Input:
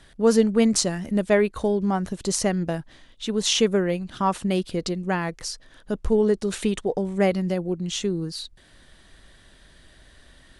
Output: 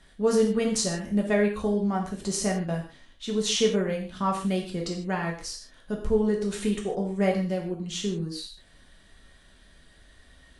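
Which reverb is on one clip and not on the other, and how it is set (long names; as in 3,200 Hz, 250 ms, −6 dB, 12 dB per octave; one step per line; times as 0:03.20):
reverb whose tail is shaped and stops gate 180 ms falling, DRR −1 dB
level −7 dB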